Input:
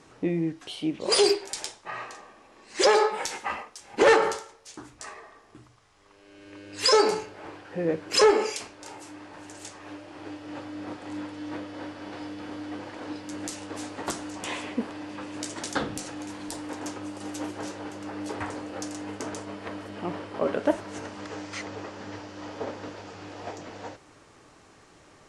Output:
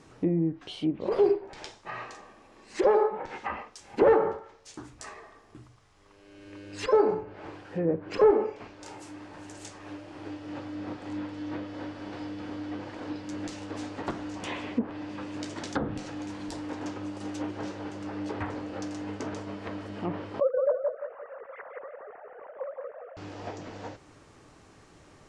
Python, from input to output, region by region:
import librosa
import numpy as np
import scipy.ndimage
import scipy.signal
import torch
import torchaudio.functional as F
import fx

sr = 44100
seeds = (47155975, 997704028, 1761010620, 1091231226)

y = fx.chain(x, sr, fx.sine_speech(),
    fx.lowpass(hz=1700.0, slope=24),
    fx.echo_feedback(ms=173, feedback_pct=32, wet_db=-3.5), at=(20.4, 23.17))
y = fx.env_lowpass_down(y, sr, base_hz=1000.0, full_db=-24.0)
y = fx.low_shelf(y, sr, hz=270.0, db=7.0)
y = y * 10.0 ** (-2.5 / 20.0)